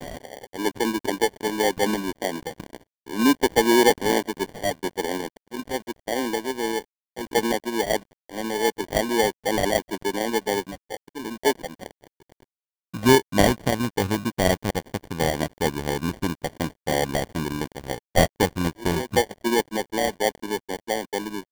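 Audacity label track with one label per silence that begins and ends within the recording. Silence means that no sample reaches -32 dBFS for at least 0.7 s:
11.860000	12.940000	silence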